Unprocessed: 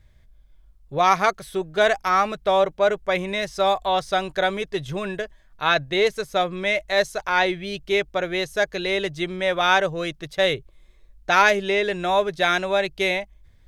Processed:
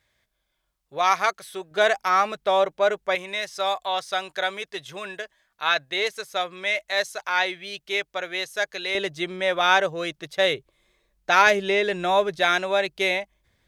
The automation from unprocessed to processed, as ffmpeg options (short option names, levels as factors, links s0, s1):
-af "asetnsamples=n=441:p=0,asendcmd='1.71 highpass f 410;3.15 highpass f 1100;8.95 highpass f 310;11.47 highpass f 140;12.39 highpass f 320',highpass=f=930:p=1"